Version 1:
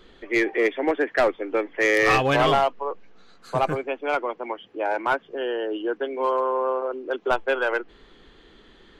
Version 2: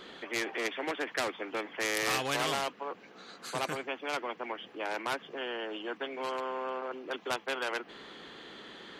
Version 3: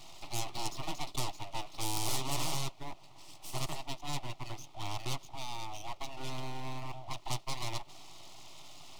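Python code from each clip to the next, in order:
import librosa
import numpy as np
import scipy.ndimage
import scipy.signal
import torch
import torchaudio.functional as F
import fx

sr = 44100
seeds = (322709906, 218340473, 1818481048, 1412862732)

y1 = scipy.signal.sosfilt(scipy.signal.butter(2, 200.0, 'highpass', fs=sr, output='sos'), x)
y1 = fx.spectral_comp(y1, sr, ratio=2.0)
y1 = y1 * librosa.db_to_amplitude(-6.5)
y2 = np.abs(y1)
y2 = fx.fixed_phaser(y2, sr, hz=320.0, stages=8)
y2 = y2 * librosa.db_to_amplitude(2.0)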